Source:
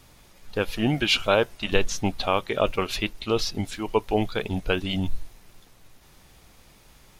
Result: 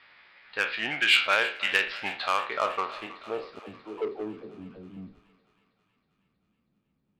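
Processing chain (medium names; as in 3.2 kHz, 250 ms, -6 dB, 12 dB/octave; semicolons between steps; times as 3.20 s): spectral sustain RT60 0.38 s; resampled via 11.025 kHz; low-pass sweep 1.9 kHz -> 210 Hz, 2.06–4.76 s; 3.59–4.97 s: phase dispersion lows, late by 93 ms, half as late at 670 Hz; in parallel at -5 dB: saturation -17.5 dBFS, distortion -10 dB; on the sum: differentiator; on a send: thinning echo 319 ms, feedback 68%, high-pass 540 Hz, level -16 dB; on the sum: trim +8 dB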